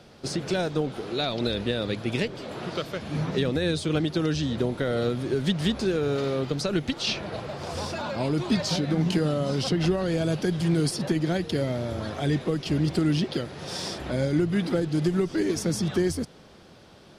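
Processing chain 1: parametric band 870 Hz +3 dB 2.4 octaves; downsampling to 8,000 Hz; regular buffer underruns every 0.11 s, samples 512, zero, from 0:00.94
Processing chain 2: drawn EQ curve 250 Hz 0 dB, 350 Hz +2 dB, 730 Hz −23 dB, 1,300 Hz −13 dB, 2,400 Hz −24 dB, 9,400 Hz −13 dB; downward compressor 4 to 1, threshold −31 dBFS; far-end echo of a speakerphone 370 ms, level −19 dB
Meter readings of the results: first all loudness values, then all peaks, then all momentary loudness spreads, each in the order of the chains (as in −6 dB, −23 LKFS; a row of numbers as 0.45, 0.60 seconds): −26.5, −35.0 LKFS; −11.5, −21.5 dBFS; 8, 5 LU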